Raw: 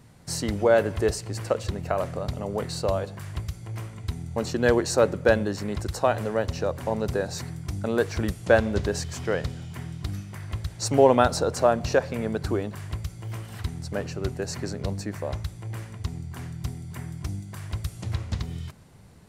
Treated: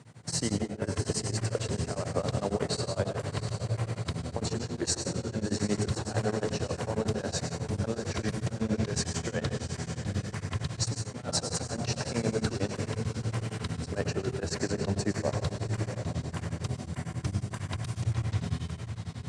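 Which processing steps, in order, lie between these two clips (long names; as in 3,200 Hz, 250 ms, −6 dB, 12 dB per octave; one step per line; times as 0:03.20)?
elliptic band-pass filter 100–8,800 Hz, stop band 40 dB
compressor whose output falls as the input rises −29 dBFS, ratio −0.5
feedback delay with all-pass diffusion 718 ms, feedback 49%, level −8 dB
dense smooth reverb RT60 0.72 s, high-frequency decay 0.8×, pre-delay 90 ms, DRR 5 dB
tremolo along a rectified sine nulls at 11 Hz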